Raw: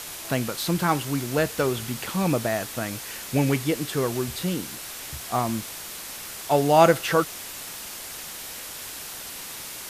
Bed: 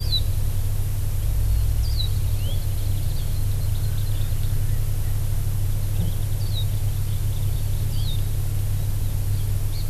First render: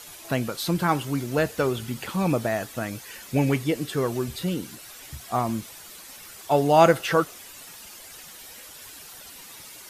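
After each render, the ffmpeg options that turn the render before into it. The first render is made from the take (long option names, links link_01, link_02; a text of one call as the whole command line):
ffmpeg -i in.wav -af "afftdn=noise_reduction=10:noise_floor=-38" out.wav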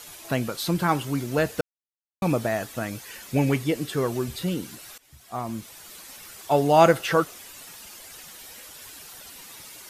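ffmpeg -i in.wav -filter_complex "[0:a]asplit=4[link_01][link_02][link_03][link_04];[link_01]atrim=end=1.61,asetpts=PTS-STARTPTS,afade=type=out:start_time=1.606:duration=0.004:curve=hsin[link_05];[link_02]atrim=start=1.61:end=2.22,asetpts=PTS-STARTPTS,volume=0[link_06];[link_03]atrim=start=2.22:end=4.98,asetpts=PTS-STARTPTS,afade=type=in:duration=0.004:curve=hsin,afade=type=out:start_time=2.756:duration=0.004:curve=hsin:silence=0.0944061[link_07];[link_04]atrim=start=4.98,asetpts=PTS-STARTPTS,afade=type=in:duration=0.98:silence=0.0944061[link_08];[link_05][link_06][link_07][link_08]concat=n=4:v=0:a=1" out.wav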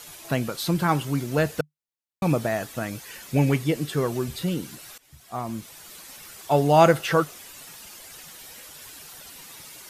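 ffmpeg -i in.wav -af "equalizer=frequency=150:width=6.7:gain=6" out.wav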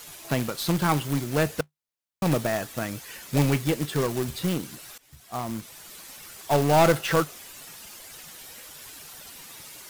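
ffmpeg -i in.wav -af "acrusher=bits=2:mode=log:mix=0:aa=0.000001,aeval=exprs='(tanh(3.55*val(0)+0.3)-tanh(0.3))/3.55':channel_layout=same" out.wav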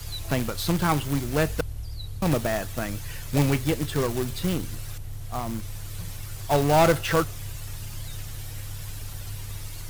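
ffmpeg -i in.wav -i bed.wav -filter_complex "[1:a]volume=-13dB[link_01];[0:a][link_01]amix=inputs=2:normalize=0" out.wav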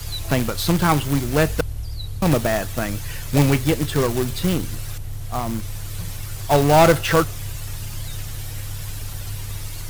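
ffmpeg -i in.wav -af "volume=5.5dB" out.wav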